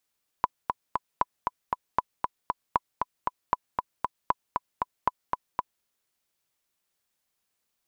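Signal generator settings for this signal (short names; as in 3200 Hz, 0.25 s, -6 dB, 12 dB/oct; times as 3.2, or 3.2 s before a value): metronome 233 bpm, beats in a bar 3, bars 7, 996 Hz, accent 4 dB -8.5 dBFS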